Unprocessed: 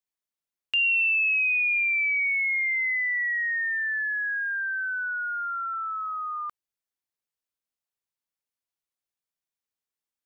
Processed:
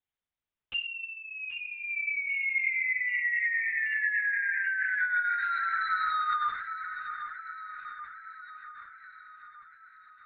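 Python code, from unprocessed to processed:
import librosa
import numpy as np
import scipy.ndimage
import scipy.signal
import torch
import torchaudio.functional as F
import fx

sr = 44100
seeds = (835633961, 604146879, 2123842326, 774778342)

p1 = x + 0.36 * np.pad(x, (int(4.8 * sr / 1000.0), 0))[:len(x)]
p2 = fx.rider(p1, sr, range_db=10, speed_s=0.5)
p3 = p1 + F.gain(torch.from_numpy(p2), 0.0).numpy()
p4 = fx.formant_cascade(p3, sr, vowel='i', at=(0.8, 2.29))
p5 = 10.0 ** (-25.5 / 20.0) * np.tanh(p4 / 10.0 ** (-25.5 / 20.0))
p6 = p5 + fx.echo_wet_bandpass(p5, sr, ms=783, feedback_pct=61, hz=1400.0, wet_db=-10.0, dry=0)
p7 = fx.rev_schroeder(p6, sr, rt60_s=0.35, comb_ms=26, drr_db=7.5)
p8 = fx.lpc_vocoder(p7, sr, seeds[0], excitation='whisper', order=10)
y = F.gain(torch.from_numpy(p8), -3.0).numpy()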